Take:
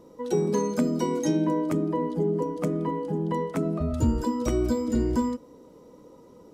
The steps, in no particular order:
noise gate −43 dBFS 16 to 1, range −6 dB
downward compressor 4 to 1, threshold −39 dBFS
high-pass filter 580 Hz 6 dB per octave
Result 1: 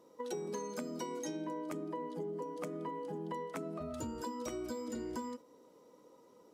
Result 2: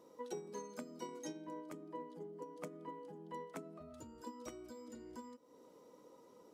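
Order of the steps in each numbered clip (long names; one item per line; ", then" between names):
high-pass filter, then noise gate, then downward compressor
downward compressor, then high-pass filter, then noise gate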